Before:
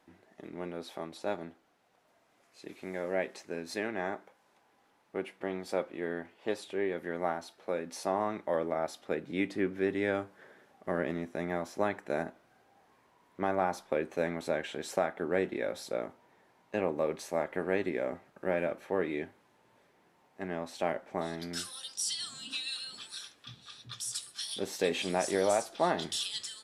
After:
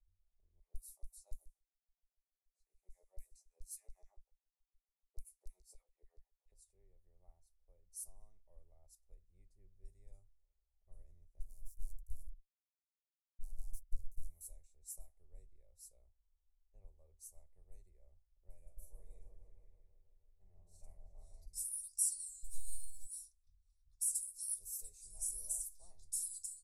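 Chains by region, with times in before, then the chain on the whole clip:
0.6–6.52 HPF 130 Hz + LFO high-pass saw down 7 Hz 310–4400 Hz + doubler 16 ms -3.5 dB
11.39–14.28 backlash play -45.5 dBFS + tube stage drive 33 dB, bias 0.7
18.61–21.46 doubler 47 ms -4 dB + repeats that get brighter 0.159 s, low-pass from 750 Hz, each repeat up 1 oct, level 0 dB
22.42–23.05 half-wave gain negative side -3 dB + fixed phaser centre 330 Hz, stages 4
whole clip: inverse Chebyshev band-stop 120–3400 Hz, stop band 60 dB; tilt -2 dB/oct; low-pass opened by the level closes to 1400 Hz, open at -55.5 dBFS; gain +15 dB

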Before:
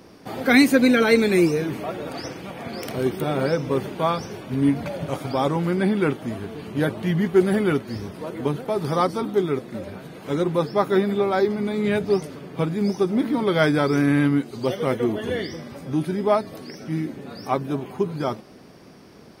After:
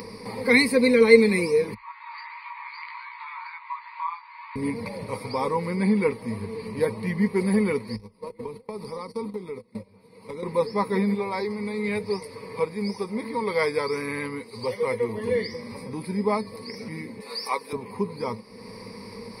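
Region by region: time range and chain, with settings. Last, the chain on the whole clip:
1.74–4.56 brick-wall FIR band-pass 850–4800 Hz + air absorption 390 m + chorus 1.4 Hz, delay 16.5 ms, depth 2.5 ms
7.96–10.43 gate -30 dBFS, range -26 dB + bell 1700 Hz -6.5 dB 0.45 oct + compressor 4:1, threshold -30 dBFS
11.15–15.17 HPF 44 Hz + bell 210 Hz -7.5 dB 1.5 oct
17.2–17.73 HPF 500 Hz + high shelf 2700 Hz +9.5 dB
whole clip: comb 6.3 ms, depth 31%; upward compressor, threshold -27 dBFS; ripple EQ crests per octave 0.91, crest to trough 18 dB; gain -6 dB

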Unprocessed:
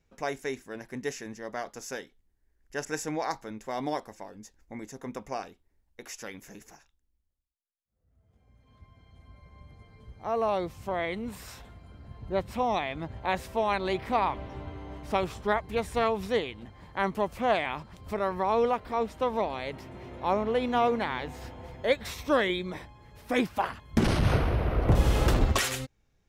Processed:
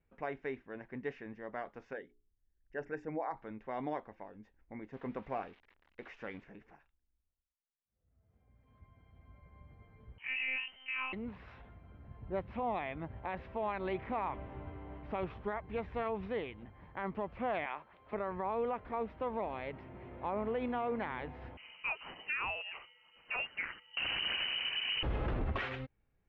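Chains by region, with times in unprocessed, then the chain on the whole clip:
1.93–3.37 formant sharpening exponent 1.5 + notches 60/120/180/240/300/360/420 Hz
4.93–6.44 switching spikes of -35.5 dBFS + sample leveller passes 1 + high shelf 4200 Hz -6.5 dB
10.18–11.13 notches 50/100/150/200 Hz + inverted band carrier 3100 Hz + monotone LPC vocoder at 8 kHz 260 Hz
17.66–18.13 synth low-pass 4300 Hz, resonance Q 2.5 + three-band isolator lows -18 dB, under 370 Hz, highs -14 dB, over 3000 Hz
21.57–25.03 inverted band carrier 3000 Hz + mismatched tape noise reduction decoder only
whole clip: inverse Chebyshev low-pass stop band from 12000 Hz, stop band 80 dB; limiter -21 dBFS; gain -6 dB

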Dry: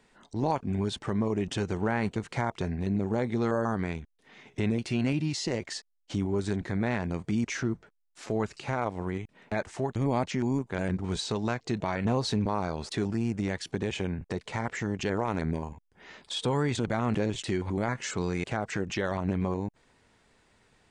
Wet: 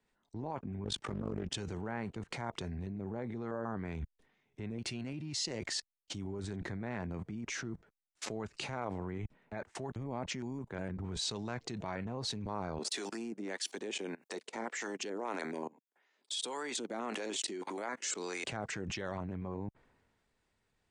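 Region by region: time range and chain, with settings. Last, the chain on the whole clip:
0.84–1.54 AM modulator 48 Hz, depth 75% + Doppler distortion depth 0.64 ms
12.78–18.44 HPF 260 Hz 24 dB/oct + high shelf 5200 Hz +10 dB + harmonic tremolo 1.7 Hz, crossover 550 Hz
whole clip: level quantiser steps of 23 dB; three-band expander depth 70%; gain +7 dB

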